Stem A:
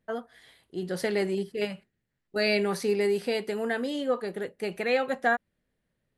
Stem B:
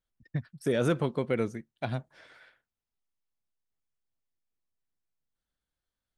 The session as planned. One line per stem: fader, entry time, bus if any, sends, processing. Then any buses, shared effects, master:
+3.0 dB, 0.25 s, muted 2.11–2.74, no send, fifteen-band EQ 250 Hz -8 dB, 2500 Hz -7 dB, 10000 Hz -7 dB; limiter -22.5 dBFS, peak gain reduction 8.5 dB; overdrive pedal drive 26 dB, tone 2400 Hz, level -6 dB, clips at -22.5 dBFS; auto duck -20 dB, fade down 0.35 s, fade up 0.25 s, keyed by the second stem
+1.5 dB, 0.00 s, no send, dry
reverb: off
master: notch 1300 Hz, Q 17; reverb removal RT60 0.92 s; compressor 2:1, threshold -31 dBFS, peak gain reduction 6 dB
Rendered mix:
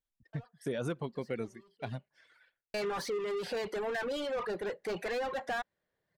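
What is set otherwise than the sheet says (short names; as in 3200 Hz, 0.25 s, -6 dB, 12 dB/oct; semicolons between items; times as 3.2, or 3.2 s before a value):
stem A +3.0 dB -> -4.0 dB; stem B +1.5 dB -> -6.0 dB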